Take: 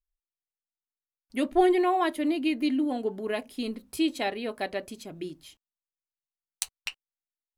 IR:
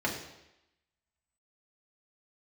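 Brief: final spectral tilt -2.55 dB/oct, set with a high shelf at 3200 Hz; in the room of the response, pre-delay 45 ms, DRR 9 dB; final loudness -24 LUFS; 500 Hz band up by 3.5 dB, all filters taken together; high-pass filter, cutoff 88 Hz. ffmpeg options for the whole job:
-filter_complex "[0:a]highpass=88,equalizer=f=500:t=o:g=5.5,highshelf=f=3.2k:g=3.5,asplit=2[a][b];[1:a]atrim=start_sample=2205,adelay=45[c];[b][c]afir=irnorm=-1:irlink=0,volume=-17.5dB[d];[a][d]amix=inputs=2:normalize=0,volume=1dB"

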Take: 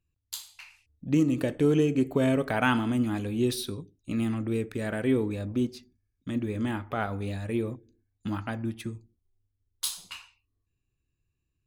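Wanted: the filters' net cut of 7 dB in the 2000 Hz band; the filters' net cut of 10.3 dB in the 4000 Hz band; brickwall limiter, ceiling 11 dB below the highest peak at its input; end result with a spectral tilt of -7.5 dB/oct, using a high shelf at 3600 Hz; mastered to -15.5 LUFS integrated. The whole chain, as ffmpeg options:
-af "equalizer=f=2k:t=o:g=-7.5,highshelf=f=3.6k:g=-4,equalizer=f=4k:t=o:g=-8,volume=18dB,alimiter=limit=-6dB:level=0:latency=1"

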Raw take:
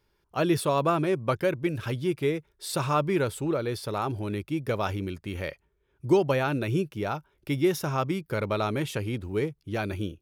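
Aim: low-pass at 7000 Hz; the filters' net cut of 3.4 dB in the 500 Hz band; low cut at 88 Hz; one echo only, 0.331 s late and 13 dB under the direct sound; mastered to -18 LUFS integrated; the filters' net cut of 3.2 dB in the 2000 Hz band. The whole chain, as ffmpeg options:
-af "highpass=88,lowpass=7k,equalizer=f=500:t=o:g=-4.5,equalizer=f=2k:t=o:g=-4,aecho=1:1:331:0.224,volume=12.5dB"

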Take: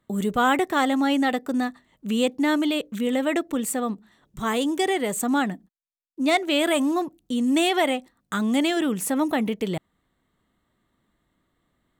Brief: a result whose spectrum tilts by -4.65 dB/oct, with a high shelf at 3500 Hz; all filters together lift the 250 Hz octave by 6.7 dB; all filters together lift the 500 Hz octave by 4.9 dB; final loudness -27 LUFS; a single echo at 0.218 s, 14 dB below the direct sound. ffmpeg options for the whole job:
-af "equalizer=f=250:t=o:g=6.5,equalizer=f=500:t=o:g=4.5,highshelf=f=3.5k:g=-6,aecho=1:1:218:0.2,volume=-8.5dB"

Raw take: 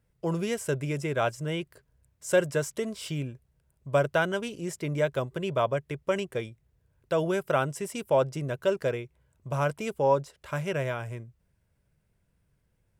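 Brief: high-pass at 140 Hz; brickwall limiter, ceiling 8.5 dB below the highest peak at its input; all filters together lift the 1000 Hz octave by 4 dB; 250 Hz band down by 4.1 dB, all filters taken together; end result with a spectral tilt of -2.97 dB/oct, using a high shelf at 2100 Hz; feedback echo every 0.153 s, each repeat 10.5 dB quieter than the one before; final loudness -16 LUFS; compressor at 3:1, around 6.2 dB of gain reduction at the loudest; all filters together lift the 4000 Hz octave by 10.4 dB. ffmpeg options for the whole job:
-af "highpass=140,equalizer=f=250:t=o:g=-6,equalizer=f=1k:t=o:g=3.5,highshelf=f=2.1k:g=7,equalizer=f=4k:t=o:g=7.5,acompressor=threshold=-25dB:ratio=3,alimiter=limit=-20.5dB:level=0:latency=1,aecho=1:1:153|306|459:0.299|0.0896|0.0269,volume=17dB"

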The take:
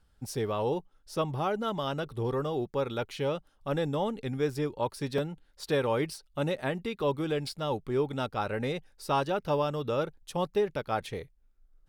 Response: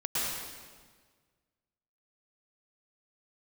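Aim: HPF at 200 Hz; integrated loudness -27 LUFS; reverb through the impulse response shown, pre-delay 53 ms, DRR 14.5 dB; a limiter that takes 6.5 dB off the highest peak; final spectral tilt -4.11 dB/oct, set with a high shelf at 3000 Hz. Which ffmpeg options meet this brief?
-filter_complex "[0:a]highpass=200,highshelf=f=3k:g=7.5,alimiter=limit=-20.5dB:level=0:latency=1,asplit=2[a][b];[1:a]atrim=start_sample=2205,adelay=53[c];[b][c]afir=irnorm=-1:irlink=0,volume=-23dB[d];[a][d]amix=inputs=2:normalize=0,volume=6dB"

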